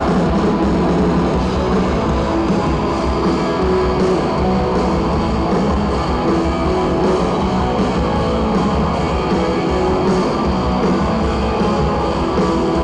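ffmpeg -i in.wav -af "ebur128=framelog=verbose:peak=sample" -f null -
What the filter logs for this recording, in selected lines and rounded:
Integrated loudness:
  I:         -16.5 LUFS
  Threshold: -26.5 LUFS
Loudness range:
  LRA:         0.2 LU
  Threshold: -36.5 LUFS
  LRA low:   -16.6 LUFS
  LRA high:  -16.4 LUFS
Sample peak:
  Peak:       -9.6 dBFS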